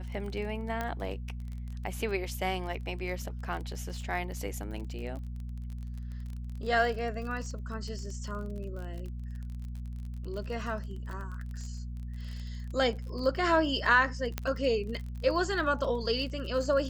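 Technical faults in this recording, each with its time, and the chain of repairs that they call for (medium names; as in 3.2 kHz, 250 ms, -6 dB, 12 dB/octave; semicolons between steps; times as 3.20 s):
crackle 31 per s -38 dBFS
hum 60 Hz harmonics 4 -38 dBFS
0.81 s: pop -19 dBFS
14.38 s: pop -15 dBFS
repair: de-click; de-hum 60 Hz, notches 4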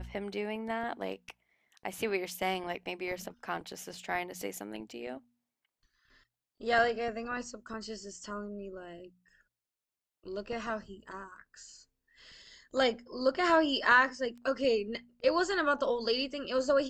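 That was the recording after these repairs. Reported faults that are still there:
0.81 s: pop
14.38 s: pop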